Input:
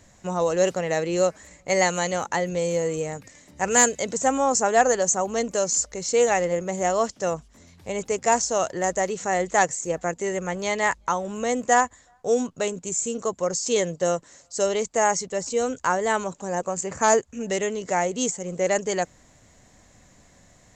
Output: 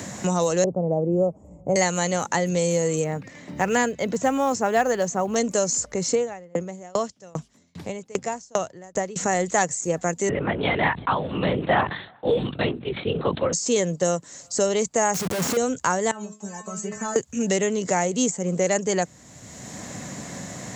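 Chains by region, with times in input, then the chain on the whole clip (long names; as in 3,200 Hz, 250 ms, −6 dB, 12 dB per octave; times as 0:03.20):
0:00.64–0:01.76: inverse Chebyshev low-pass filter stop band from 1,600 Hz + low-shelf EQ 82 Hz +12 dB
0:03.04–0:05.36: low-pass filter 2,500 Hz + floating-point word with a short mantissa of 6 bits
0:06.15–0:09.16: low-pass filter 1,900 Hz 6 dB per octave + tremolo with a ramp in dB decaying 2.5 Hz, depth 36 dB
0:10.29–0:13.53: linear-prediction vocoder at 8 kHz whisper + level that may fall only so fast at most 120 dB per second
0:15.14–0:15.57: high-shelf EQ 4,000 Hz −5.5 dB + comparator with hysteresis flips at −43 dBFS
0:16.11–0:17.16: downward compressor 10 to 1, threshold −25 dBFS + stiff-string resonator 210 Hz, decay 0.25 s, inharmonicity 0.002
whole clip: high-pass filter 140 Hz 12 dB per octave; bass and treble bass +8 dB, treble +5 dB; multiband upward and downward compressor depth 70%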